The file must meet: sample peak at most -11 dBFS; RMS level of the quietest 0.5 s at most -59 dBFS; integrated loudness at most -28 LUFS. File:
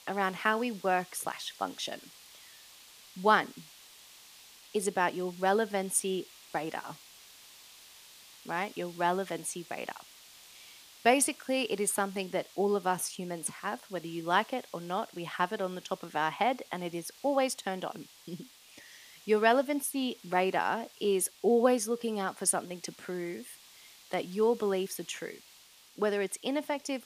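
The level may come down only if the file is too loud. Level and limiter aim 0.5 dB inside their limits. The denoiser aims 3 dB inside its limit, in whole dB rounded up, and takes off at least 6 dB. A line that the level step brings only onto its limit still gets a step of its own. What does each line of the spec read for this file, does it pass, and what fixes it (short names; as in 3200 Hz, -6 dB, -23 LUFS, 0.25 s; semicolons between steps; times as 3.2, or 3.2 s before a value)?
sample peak -9.0 dBFS: fail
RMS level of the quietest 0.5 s -58 dBFS: fail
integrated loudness -31.5 LUFS: OK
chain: denoiser 6 dB, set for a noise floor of -58 dBFS; limiter -11.5 dBFS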